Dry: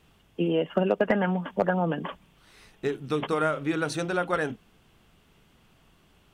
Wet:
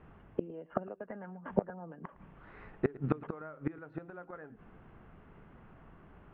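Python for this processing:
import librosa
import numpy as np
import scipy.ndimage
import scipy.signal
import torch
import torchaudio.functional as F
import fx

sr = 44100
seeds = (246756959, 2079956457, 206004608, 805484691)

y = scipy.signal.sosfilt(scipy.signal.butter(4, 1800.0, 'lowpass', fs=sr, output='sos'), x)
y = fx.gate_flip(y, sr, shuts_db=-21.0, range_db=-26)
y = y + 10.0 ** (-21.0 / 20.0) * np.pad(y, (int(110 * sr / 1000.0), 0))[:len(y)]
y = y * librosa.db_to_amplitude(5.5)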